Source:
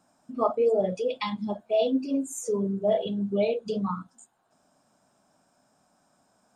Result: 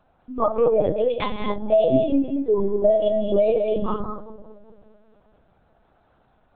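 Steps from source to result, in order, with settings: 1.70–3.70 s: dynamic bell 660 Hz, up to +7 dB, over -36 dBFS, Q 0.92; compression 20:1, threshold -19 dBFS, peak gain reduction 8 dB; bucket-brigade echo 391 ms, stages 2048, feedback 37%, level -15 dB; gated-style reverb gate 250 ms rising, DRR 5 dB; LPC vocoder at 8 kHz pitch kept; trim +5 dB

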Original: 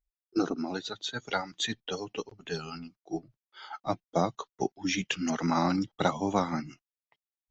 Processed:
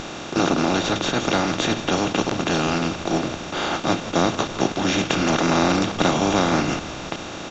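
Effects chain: spectral levelling over time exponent 0.2; bass shelf 140 Hz +7 dB; frequency-shifting echo 165 ms, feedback 55%, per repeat -82 Hz, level -14.5 dB

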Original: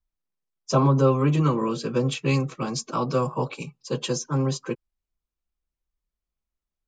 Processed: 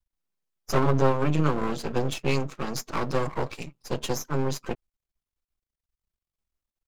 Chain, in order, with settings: half-wave rectifier; trim +1.5 dB

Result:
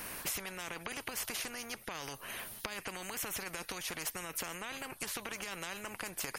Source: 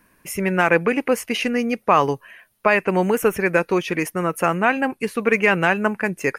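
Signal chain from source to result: peak limiter -14 dBFS, peak gain reduction 10 dB; compression 8:1, threshold -35 dBFS, peak gain reduction 16 dB; spectrum-flattening compressor 4:1; trim +4 dB

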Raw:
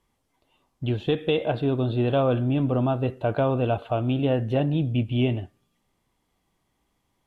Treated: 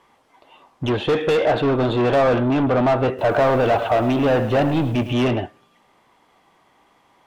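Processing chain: overdrive pedal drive 26 dB, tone 1.8 kHz, clips at -11.5 dBFS; peaking EQ 960 Hz +3.5 dB 1.8 oct; 3.08–5.13 s: bit-crushed delay 106 ms, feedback 35%, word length 7-bit, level -12 dB

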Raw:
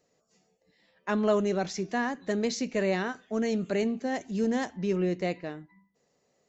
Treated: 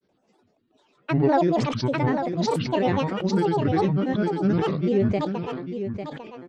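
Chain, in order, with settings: peaking EQ 290 Hz +6.5 dB 1.4 oct; band-stop 6.6 kHz, Q 17; granulator, pitch spread up and down by 12 st; distance through air 120 m; delay 849 ms -8.5 dB; decay stretcher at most 36 dB/s; trim +2.5 dB

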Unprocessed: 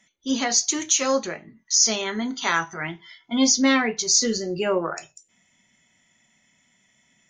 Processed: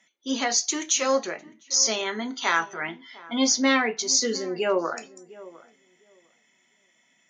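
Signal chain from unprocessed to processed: high-pass 290 Hz 12 dB/octave; treble shelf 7.9 kHz -9 dB; on a send: filtered feedback delay 704 ms, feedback 17%, low-pass 1 kHz, level -18 dB

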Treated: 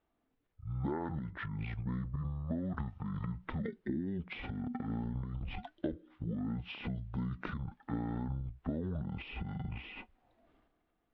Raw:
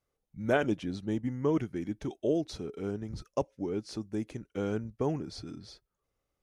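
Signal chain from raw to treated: bass shelf 480 Hz -8 dB; transient shaper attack -1 dB, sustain +12 dB; compression 16:1, threshold -41 dBFS, peak gain reduction 18 dB; distance through air 180 m; speed mistake 78 rpm record played at 45 rpm; trim +8 dB

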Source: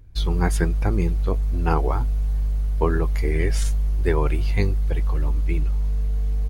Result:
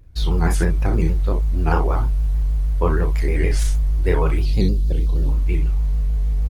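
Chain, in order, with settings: 4.42–5.29 s: graphic EQ 250/1000/2000/4000 Hz +7/-11/-12/+7 dB; early reflections 35 ms -4.5 dB, 61 ms -9 dB; vibrato with a chosen wave square 6.4 Hz, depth 100 cents

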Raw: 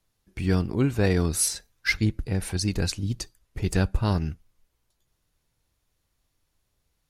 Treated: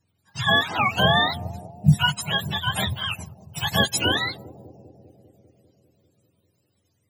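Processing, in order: spectrum inverted on a logarithmic axis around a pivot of 560 Hz; bucket-brigade echo 198 ms, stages 1024, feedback 72%, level -15 dB; trim +6 dB

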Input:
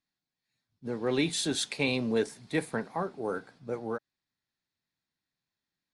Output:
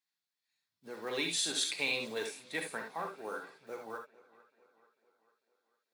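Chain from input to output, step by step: block-companded coder 7-bit; high-pass 1.2 kHz 6 dB/octave; on a send: tape echo 446 ms, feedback 54%, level -20 dB, low-pass 5.5 kHz; on the sum: gated-style reverb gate 90 ms rising, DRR 3.5 dB; trim -1.5 dB

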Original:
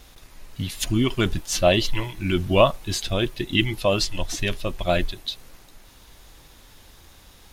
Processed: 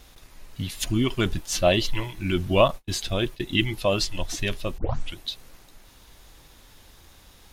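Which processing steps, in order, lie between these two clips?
2.68–3.40 s: gate -31 dBFS, range -35 dB; 4.78 s: tape start 0.40 s; trim -2 dB

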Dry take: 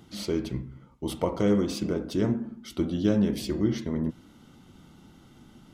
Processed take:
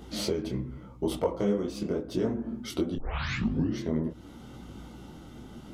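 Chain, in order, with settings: peaking EQ 520 Hz +6 dB 1.6 oct; 1.17–2.31 s: gate -24 dBFS, range -6 dB; 2.95 s: tape start 0.82 s; compression 4:1, threshold -31 dBFS, peak gain reduction 13.5 dB; hum 60 Hz, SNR 19 dB; detune thickener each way 29 cents; trim +8 dB

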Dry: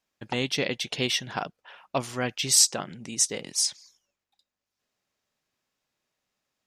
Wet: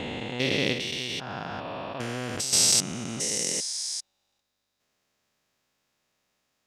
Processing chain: spectrogram pixelated in time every 400 ms; 0.72–2.53 s: compression 4:1, threshold -37 dBFS, peak gain reduction 10.5 dB; trim +7.5 dB

